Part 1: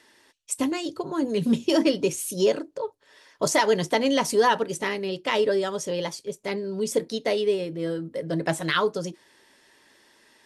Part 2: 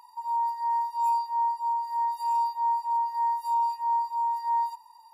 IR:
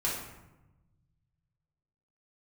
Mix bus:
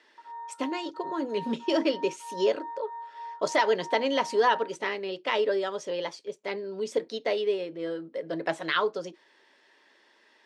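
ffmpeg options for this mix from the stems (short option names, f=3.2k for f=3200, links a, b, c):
-filter_complex "[0:a]volume=-2dB[a];[1:a]aecho=1:1:5.5:0.5,afwtdn=0.0562,volume=-16.5dB[b];[a][b]amix=inputs=2:normalize=0,highpass=340,lowpass=4.1k"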